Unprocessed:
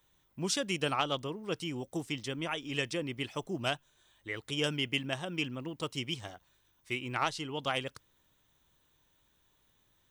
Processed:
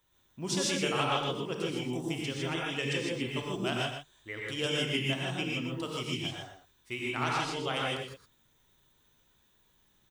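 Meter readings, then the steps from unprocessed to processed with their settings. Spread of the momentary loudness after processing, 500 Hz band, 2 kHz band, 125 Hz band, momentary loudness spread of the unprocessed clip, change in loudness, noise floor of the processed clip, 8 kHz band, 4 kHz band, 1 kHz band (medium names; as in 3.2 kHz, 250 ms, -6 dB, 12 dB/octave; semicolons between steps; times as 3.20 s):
9 LU, +2.5 dB, +2.5 dB, +3.5 dB, 8 LU, +2.5 dB, -69 dBFS, +3.0 dB, +2.5 dB, +2.0 dB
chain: delay 120 ms -8.5 dB; gated-style reverb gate 180 ms rising, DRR -3 dB; trim -3 dB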